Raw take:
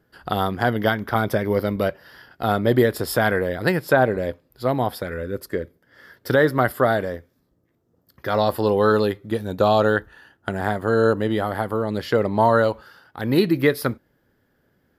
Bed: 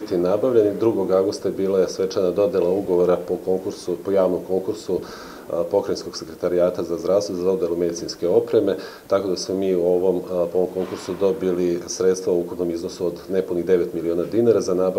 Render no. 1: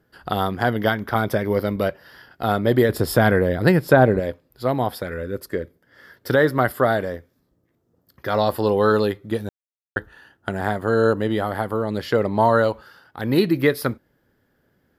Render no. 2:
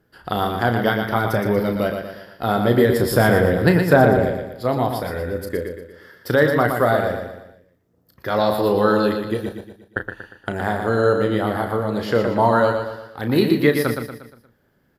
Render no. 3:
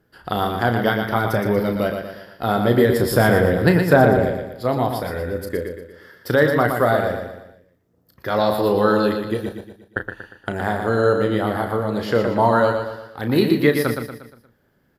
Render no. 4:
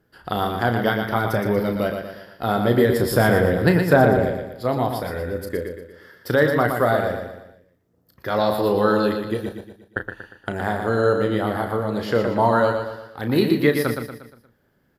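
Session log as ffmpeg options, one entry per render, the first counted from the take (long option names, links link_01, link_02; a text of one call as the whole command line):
ffmpeg -i in.wav -filter_complex "[0:a]asettb=1/sr,asplit=3[link_01][link_02][link_03];[link_01]atrim=end=2.894[link_04];[link_02]atrim=start=2.89:end=4.2,asetpts=PTS-STARTPTS,afade=type=in:duration=0.004:curve=qsin,afade=type=out:start_time=1.306:duration=0.004:curve=qsin,lowshelf=frequency=410:gain=8[link_05];[link_03]atrim=start=4.196[link_06];[link_04][link_05]acrossfade=duration=0.004:curve1=hsin:curve2=qsin[link_07];[link_07][link_06]acrossfade=duration=0.004:curve1=qsin:curve2=hsin,asplit=3[link_08][link_09][link_10];[link_08]atrim=end=9.49,asetpts=PTS-STARTPTS,afade=type=out:start_time=9.486:duration=0.004:curve=hsin[link_11];[link_09]atrim=start=9.49:end=9.96,asetpts=PTS-STARTPTS,volume=0[link_12];[link_10]atrim=start=9.96,asetpts=PTS-STARTPTS,afade=type=in:duration=0.004:curve=hsin[link_13];[link_11][link_12][link_13]concat=n=3:v=0:a=1" out.wav
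ffmpeg -i in.wav -filter_complex "[0:a]asplit=2[link_01][link_02];[link_02]adelay=34,volume=-8.5dB[link_03];[link_01][link_03]amix=inputs=2:normalize=0,aecho=1:1:118|236|354|472|590:0.501|0.226|0.101|0.0457|0.0206" out.wav
ffmpeg -i in.wav -af anull out.wav
ffmpeg -i in.wav -af "volume=-1.5dB" out.wav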